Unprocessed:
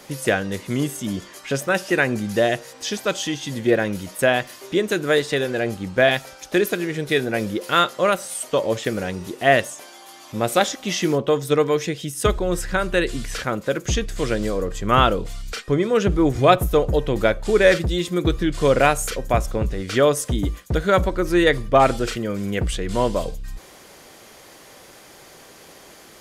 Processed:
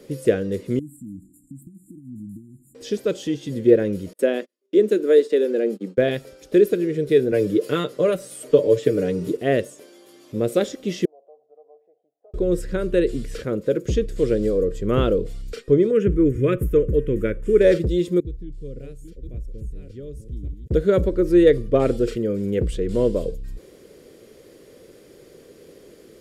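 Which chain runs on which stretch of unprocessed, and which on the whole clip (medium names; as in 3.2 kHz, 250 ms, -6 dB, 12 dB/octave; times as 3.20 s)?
0.79–2.75 s: compression 3:1, threshold -36 dBFS + brick-wall FIR band-stop 330–7000 Hz
4.13–5.98 s: gate -33 dBFS, range -38 dB + elliptic high-pass 200 Hz
7.32–9.37 s: comb 6.8 ms, depth 64% + three bands compressed up and down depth 40%
11.05–12.34 s: compression 3:1, threshold -25 dBFS + Butterworth band-pass 720 Hz, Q 5.7
15.91–17.61 s: dynamic bell 2.2 kHz, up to +3 dB, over -32 dBFS, Q 0.84 + static phaser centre 1.8 kHz, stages 4
18.20–20.71 s: chunks repeated in reverse 571 ms, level -6.5 dB + amplifier tone stack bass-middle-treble 10-0-1
whole clip: resonant low shelf 610 Hz +9.5 dB, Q 3; band-stop 6.2 kHz, Q 15; trim -10 dB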